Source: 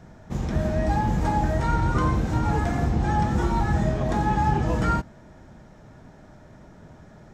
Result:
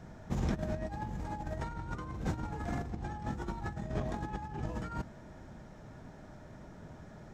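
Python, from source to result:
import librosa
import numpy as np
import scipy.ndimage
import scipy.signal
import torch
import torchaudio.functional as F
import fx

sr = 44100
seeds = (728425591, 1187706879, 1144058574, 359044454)

y = fx.over_compress(x, sr, threshold_db=-27.0, ratio=-0.5)
y = y * 10.0 ** (-8.5 / 20.0)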